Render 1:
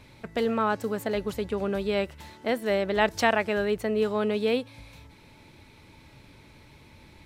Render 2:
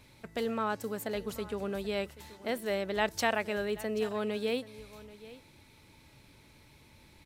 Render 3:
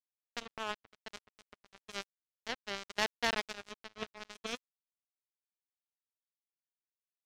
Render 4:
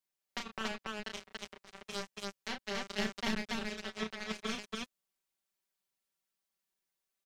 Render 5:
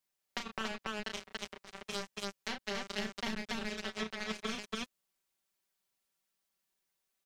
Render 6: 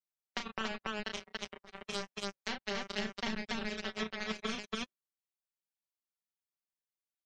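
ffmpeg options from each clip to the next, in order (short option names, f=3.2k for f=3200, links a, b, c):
-af "highshelf=f=5.5k:g=9.5,aecho=1:1:782:0.126,volume=-7dB"
-af "aresample=8000,asoftclip=type=tanh:threshold=-23.5dB,aresample=44100,acrusher=bits=3:mix=0:aa=0.5,volume=6.5dB"
-filter_complex "[0:a]acrossover=split=270[a][b];[b]acompressor=threshold=-41dB:ratio=6[c];[a][c]amix=inputs=2:normalize=0,aecho=1:1:5.2:0.79,aecho=1:1:32.07|282.8:0.562|0.891,volume=3dB"
-af "acompressor=threshold=-37dB:ratio=6,volume=3.5dB"
-af "afftdn=nr=18:nf=-53,volume=1dB"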